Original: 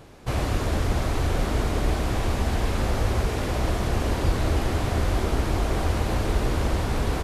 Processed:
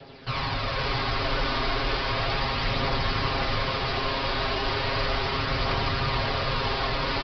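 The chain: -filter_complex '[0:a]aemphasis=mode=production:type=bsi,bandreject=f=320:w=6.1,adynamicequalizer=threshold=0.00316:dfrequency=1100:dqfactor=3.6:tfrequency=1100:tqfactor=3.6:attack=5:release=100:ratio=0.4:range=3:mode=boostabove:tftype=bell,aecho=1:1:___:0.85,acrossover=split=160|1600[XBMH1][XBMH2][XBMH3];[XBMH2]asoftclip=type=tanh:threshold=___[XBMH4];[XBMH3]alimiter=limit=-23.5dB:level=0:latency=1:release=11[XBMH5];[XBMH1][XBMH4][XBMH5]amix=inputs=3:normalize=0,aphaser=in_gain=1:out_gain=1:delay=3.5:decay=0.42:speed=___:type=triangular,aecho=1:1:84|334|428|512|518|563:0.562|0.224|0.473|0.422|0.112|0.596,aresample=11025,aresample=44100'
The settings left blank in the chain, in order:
7.4, -33dB, 0.35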